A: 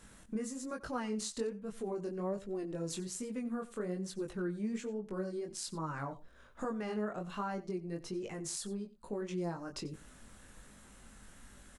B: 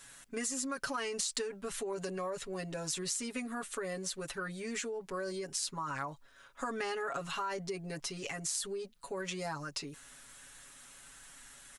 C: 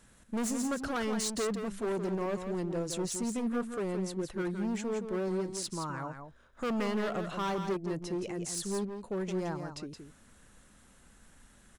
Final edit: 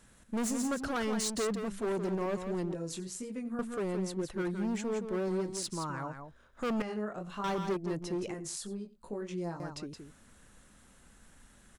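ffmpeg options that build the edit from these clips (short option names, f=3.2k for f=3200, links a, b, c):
-filter_complex "[0:a]asplit=3[a][b][c];[2:a]asplit=4[d][e][f][g];[d]atrim=end=2.742[h];[a]atrim=start=2.738:end=3.592[i];[e]atrim=start=3.588:end=6.822[j];[b]atrim=start=6.818:end=7.442[k];[f]atrim=start=7.438:end=8.342[l];[c]atrim=start=8.338:end=9.602[m];[g]atrim=start=9.598[n];[h][i]acrossfade=d=0.004:c1=hsin:c2=hsin[o];[o][j]acrossfade=d=0.004:c1=hsin:c2=hsin[p];[p][k]acrossfade=d=0.004:c1=hsin:c2=hsin[q];[q][l]acrossfade=d=0.004:c1=hsin:c2=hsin[r];[r][m]acrossfade=d=0.004:c1=hsin:c2=hsin[s];[s][n]acrossfade=d=0.004:c1=hsin:c2=hsin"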